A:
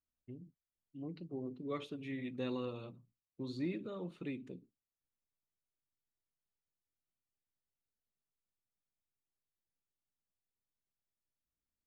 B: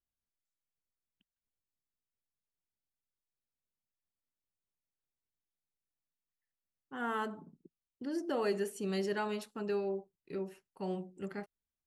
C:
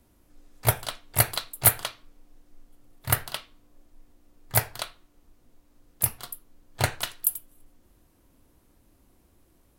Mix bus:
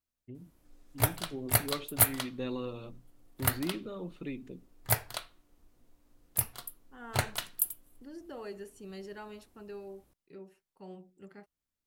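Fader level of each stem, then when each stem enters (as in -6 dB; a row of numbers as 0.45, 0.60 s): +2.5, -10.0, -5.0 dB; 0.00, 0.00, 0.35 s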